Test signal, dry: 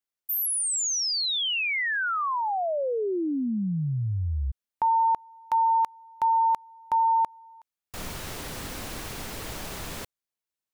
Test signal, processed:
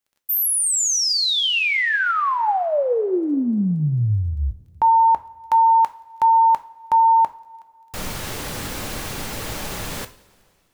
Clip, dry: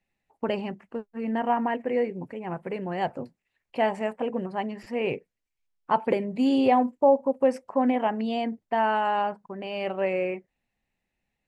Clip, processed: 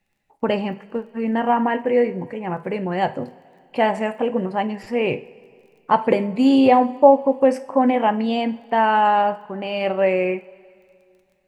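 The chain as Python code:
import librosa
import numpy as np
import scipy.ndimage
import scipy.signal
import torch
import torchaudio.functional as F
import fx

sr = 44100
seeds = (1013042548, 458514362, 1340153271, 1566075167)

y = fx.dmg_crackle(x, sr, seeds[0], per_s=16.0, level_db=-55.0)
y = fx.rev_double_slope(y, sr, seeds[1], early_s=0.37, late_s=2.5, knee_db=-19, drr_db=9.0)
y = y * 10.0 ** (6.5 / 20.0)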